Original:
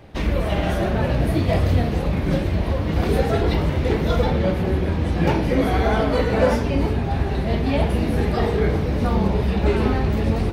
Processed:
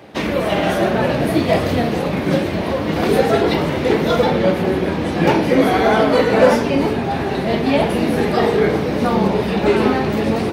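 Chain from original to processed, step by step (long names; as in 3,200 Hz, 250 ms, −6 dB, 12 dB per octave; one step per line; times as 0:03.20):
high-pass filter 200 Hz 12 dB per octave
hard clipping −10.5 dBFS, distortion −34 dB
level +7 dB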